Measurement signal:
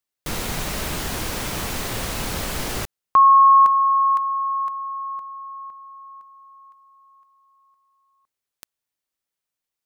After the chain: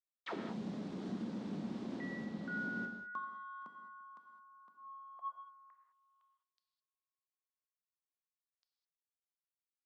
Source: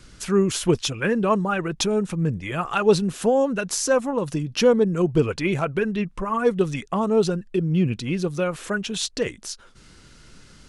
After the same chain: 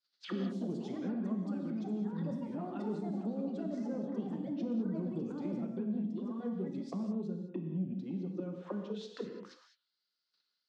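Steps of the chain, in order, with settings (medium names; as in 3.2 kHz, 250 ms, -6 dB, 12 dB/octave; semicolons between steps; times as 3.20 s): level-controlled noise filter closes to 1.2 kHz, open at -17.5 dBFS; hum notches 50/100/150/200/250/300/350/400/450/500 Hz; gate -45 dBFS, range -14 dB; bass shelf 230 Hz -2.5 dB; ever faster or slower copies 116 ms, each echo +5 st, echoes 2; auto-wah 220–4900 Hz, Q 4.7, down, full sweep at -23.5 dBFS; compression 2:1, threshold -36 dBFS; high-order bell 5.5 kHz +9 dB; saturation -25 dBFS; high-pass 170 Hz 12 dB/octave; gated-style reverb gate 230 ms flat, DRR 3.5 dB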